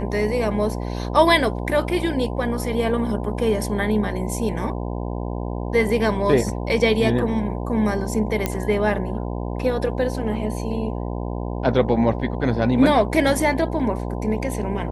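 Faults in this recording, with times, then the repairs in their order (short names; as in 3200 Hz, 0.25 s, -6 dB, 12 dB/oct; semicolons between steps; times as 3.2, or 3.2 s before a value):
buzz 60 Hz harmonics 17 -27 dBFS
8.46 pop -7 dBFS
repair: de-click; de-hum 60 Hz, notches 17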